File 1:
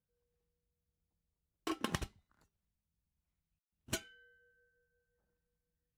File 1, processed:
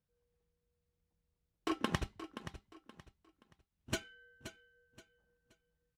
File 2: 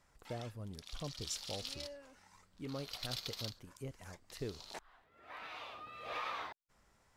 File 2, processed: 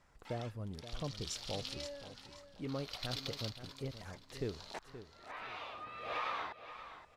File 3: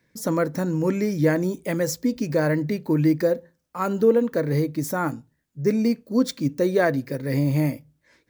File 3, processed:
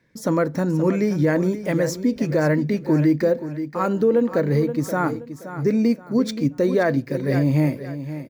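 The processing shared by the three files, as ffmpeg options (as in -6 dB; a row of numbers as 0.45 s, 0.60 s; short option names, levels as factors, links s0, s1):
-af "lowpass=f=4000:p=1,aecho=1:1:525|1050|1575:0.251|0.0754|0.0226,alimiter=level_in=3.98:limit=0.891:release=50:level=0:latency=1,volume=0.355"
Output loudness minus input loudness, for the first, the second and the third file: 0.0 LU, +1.5 LU, +2.0 LU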